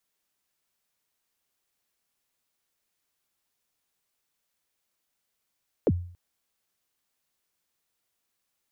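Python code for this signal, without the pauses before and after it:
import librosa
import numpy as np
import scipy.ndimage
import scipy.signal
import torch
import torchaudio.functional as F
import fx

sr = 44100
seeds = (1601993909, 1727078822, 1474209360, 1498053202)

y = fx.drum_kick(sr, seeds[0], length_s=0.28, level_db=-16, start_hz=580.0, end_hz=88.0, sweep_ms=45.0, decay_s=0.51, click=False)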